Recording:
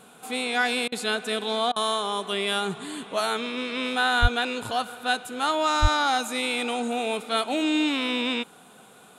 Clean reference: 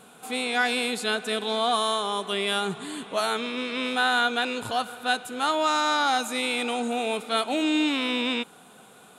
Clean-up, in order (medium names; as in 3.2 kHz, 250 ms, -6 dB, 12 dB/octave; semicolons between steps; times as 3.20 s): 4.21–4.33 s: high-pass 140 Hz 24 dB/octave; 5.81–5.93 s: high-pass 140 Hz 24 dB/octave; interpolate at 0.88/1.72 s, 40 ms